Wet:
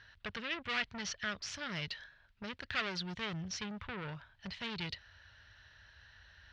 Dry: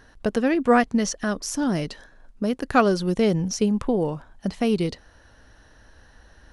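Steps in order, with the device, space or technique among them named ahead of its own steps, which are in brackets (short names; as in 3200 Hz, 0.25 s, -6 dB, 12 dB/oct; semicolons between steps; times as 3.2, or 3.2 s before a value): scooped metal amplifier (tube stage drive 25 dB, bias 0.5; speaker cabinet 87–4000 Hz, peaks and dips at 90 Hz +6 dB, 320 Hz +4 dB, 500 Hz -6 dB, 770 Hz -7 dB, 1100 Hz -6 dB; passive tone stack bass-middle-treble 10-0-10); gain +6 dB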